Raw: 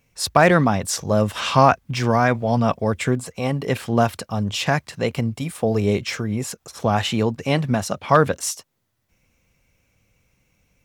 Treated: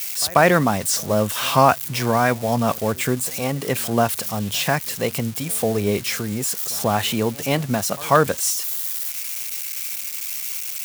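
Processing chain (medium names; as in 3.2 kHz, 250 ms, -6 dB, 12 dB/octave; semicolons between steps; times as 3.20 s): zero-crossing glitches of -20 dBFS; bass shelf 120 Hz -6.5 dB; pre-echo 139 ms -23 dB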